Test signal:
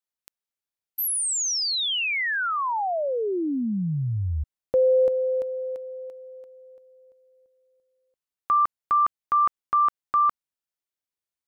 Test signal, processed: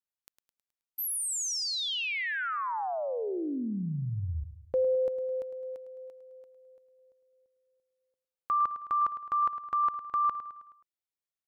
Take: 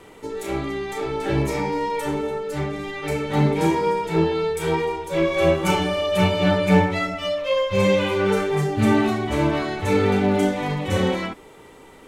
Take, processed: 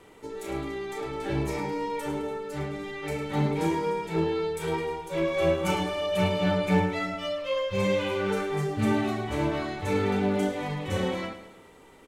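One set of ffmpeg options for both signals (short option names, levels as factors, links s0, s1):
-af "aecho=1:1:106|212|318|424|530:0.251|0.126|0.0628|0.0314|0.0157,volume=0.447"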